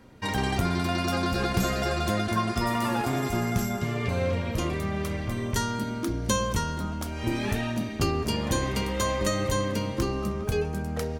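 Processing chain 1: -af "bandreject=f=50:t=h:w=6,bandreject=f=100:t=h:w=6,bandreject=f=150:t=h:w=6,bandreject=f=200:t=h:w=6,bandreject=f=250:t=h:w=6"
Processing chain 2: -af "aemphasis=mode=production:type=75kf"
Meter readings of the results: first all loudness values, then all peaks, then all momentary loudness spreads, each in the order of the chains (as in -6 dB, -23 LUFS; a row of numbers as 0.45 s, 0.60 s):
-28.5 LUFS, -25.0 LUFS; -11.0 dBFS, -1.5 dBFS; 4 LU, 6 LU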